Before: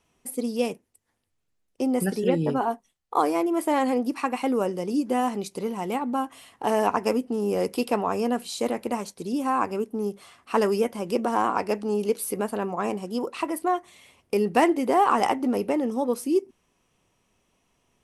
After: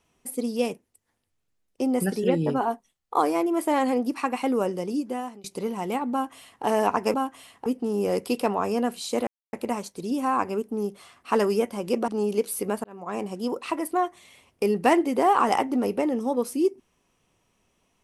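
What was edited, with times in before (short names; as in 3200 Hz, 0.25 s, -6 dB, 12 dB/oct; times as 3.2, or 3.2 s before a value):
4.79–5.44 fade out, to -23 dB
6.12–6.64 copy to 7.14
8.75 insert silence 0.26 s
11.3–11.79 cut
12.55–13.01 fade in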